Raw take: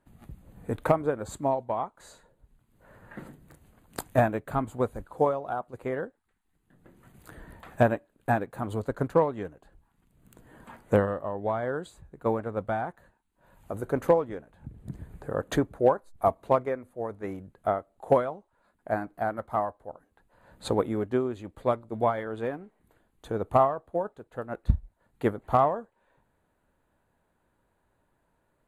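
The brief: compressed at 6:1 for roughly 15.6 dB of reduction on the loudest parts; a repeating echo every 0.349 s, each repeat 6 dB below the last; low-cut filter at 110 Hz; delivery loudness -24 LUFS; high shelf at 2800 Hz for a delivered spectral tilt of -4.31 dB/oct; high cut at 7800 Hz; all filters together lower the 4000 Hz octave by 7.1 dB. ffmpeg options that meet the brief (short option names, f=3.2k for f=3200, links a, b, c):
-af "highpass=110,lowpass=7.8k,highshelf=f=2.8k:g=-7,equalizer=f=4k:t=o:g=-3,acompressor=threshold=-34dB:ratio=6,aecho=1:1:349|698|1047|1396|1745|2094:0.501|0.251|0.125|0.0626|0.0313|0.0157,volume=16.5dB"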